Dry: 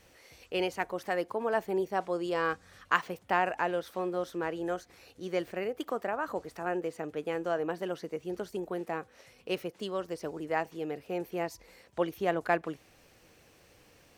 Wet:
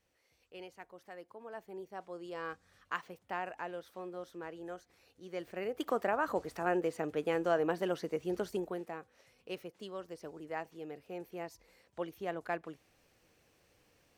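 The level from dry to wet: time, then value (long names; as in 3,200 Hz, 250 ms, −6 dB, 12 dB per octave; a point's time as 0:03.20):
0:01.31 −18 dB
0:02.46 −11 dB
0:05.28 −11 dB
0:05.90 +1 dB
0:08.53 +1 dB
0:08.96 −9 dB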